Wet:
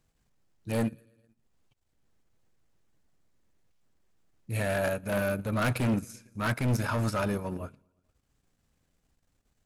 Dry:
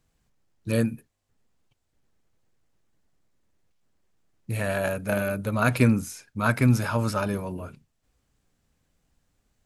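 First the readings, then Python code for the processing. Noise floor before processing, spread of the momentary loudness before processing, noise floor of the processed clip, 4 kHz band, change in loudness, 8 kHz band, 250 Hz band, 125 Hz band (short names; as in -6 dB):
-75 dBFS, 15 LU, -75 dBFS, -2.0 dB, -5.0 dB, -4.5 dB, -5.5 dB, -5.5 dB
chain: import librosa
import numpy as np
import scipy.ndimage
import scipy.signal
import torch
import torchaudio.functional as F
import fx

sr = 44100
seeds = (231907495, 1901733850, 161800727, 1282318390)

y = fx.echo_feedback(x, sr, ms=112, feedback_pct=60, wet_db=-22.5)
y = np.clip(10.0 ** (22.0 / 20.0) * y, -1.0, 1.0) / 10.0 ** (22.0 / 20.0)
y = fx.transient(y, sr, attack_db=-7, sustain_db=-11)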